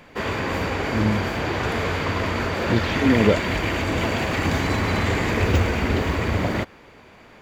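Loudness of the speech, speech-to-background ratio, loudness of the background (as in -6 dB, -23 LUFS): -23.0 LUFS, 0.5 dB, -23.5 LUFS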